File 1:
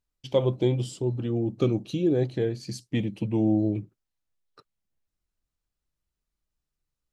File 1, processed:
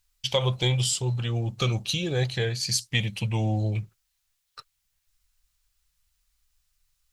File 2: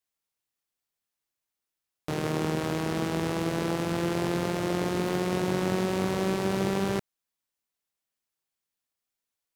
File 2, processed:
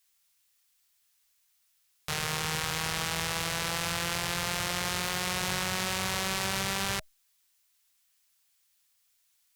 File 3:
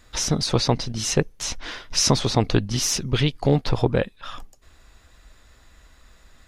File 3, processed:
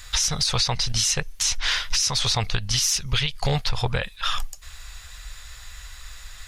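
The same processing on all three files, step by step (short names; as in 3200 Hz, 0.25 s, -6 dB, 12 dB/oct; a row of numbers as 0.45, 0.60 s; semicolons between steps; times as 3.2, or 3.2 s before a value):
passive tone stack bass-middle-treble 10-0-10; notch 630 Hz, Q 18; compressor 6:1, threshold -34 dBFS; limiter -29 dBFS; normalise peaks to -12 dBFS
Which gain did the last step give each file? +17.0, +17.0, +17.0 dB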